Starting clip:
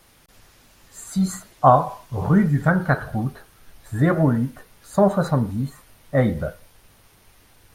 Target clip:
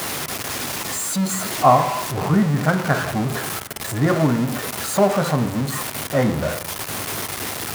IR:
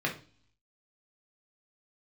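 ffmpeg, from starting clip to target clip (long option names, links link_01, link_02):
-filter_complex "[0:a]aeval=exprs='val(0)+0.5*0.133*sgn(val(0))':channel_layout=same,highpass=130,asplit=2[link_01][link_02];[1:a]atrim=start_sample=2205,asetrate=23373,aresample=44100[link_03];[link_02][link_03]afir=irnorm=-1:irlink=0,volume=-20.5dB[link_04];[link_01][link_04]amix=inputs=2:normalize=0,volume=-3.5dB"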